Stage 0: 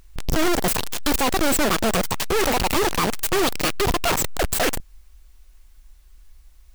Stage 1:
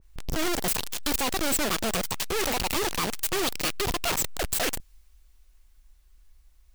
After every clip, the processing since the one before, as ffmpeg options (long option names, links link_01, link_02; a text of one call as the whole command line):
ffmpeg -i in.wav -af "adynamicequalizer=threshold=0.0178:dfrequency=2100:dqfactor=0.7:tfrequency=2100:tqfactor=0.7:attack=5:release=100:ratio=0.375:range=2.5:mode=boostabove:tftype=highshelf,volume=-8dB" out.wav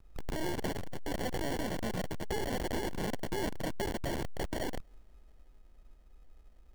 ffmpeg -i in.wav -filter_complex "[0:a]acrossover=split=310|790[link_01][link_02][link_03];[link_01]acompressor=threshold=-34dB:ratio=4[link_04];[link_02]acompressor=threshold=-39dB:ratio=4[link_05];[link_03]acompressor=threshold=-33dB:ratio=4[link_06];[link_04][link_05][link_06]amix=inputs=3:normalize=0,acrusher=samples=35:mix=1:aa=0.000001,asoftclip=type=tanh:threshold=-25.5dB" out.wav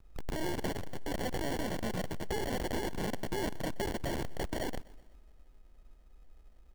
ffmpeg -i in.wav -af "aecho=1:1:125|250|375|500:0.0841|0.0438|0.0228|0.0118" out.wav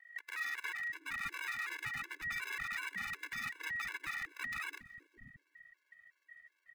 ffmpeg -i in.wav -filter_complex "[0:a]aeval=exprs='val(0)*sin(2*PI*1900*n/s)':channel_layout=same,acrossover=split=380[link_01][link_02];[link_01]adelay=610[link_03];[link_03][link_02]amix=inputs=2:normalize=0,afftfilt=real='re*gt(sin(2*PI*2.7*pts/sr)*(1-2*mod(floor(b*sr/1024/290),2)),0)':imag='im*gt(sin(2*PI*2.7*pts/sr)*(1-2*mod(floor(b*sr/1024/290),2)),0)':win_size=1024:overlap=0.75,volume=-1dB" out.wav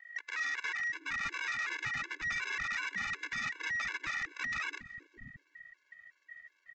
ffmpeg -i in.wav -af "asoftclip=type=tanh:threshold=-34dB,aresample=16000,aresample=44100,volume=6dB" out.wav